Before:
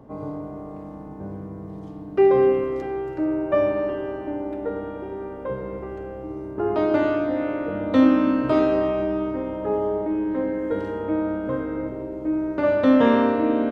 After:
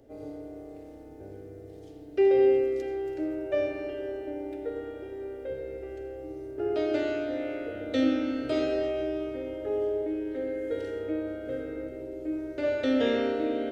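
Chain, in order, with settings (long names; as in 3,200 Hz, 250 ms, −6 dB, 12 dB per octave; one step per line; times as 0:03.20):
high-shelf EQ 2,100 Hz +10 dB
phaser with its sweep stopped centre 430 Hz, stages 4
on a send: convolution reverb RT60 0.65 s, pre-delay 76 ms, DRR 10 dB
on the sum: level −6 dB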